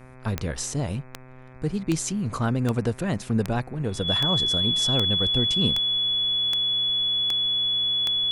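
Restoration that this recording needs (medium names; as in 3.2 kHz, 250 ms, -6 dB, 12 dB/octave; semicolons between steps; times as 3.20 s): de-click; de-hum 128.4 Hz, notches 20; band-stop 3.4 kHz, Q 30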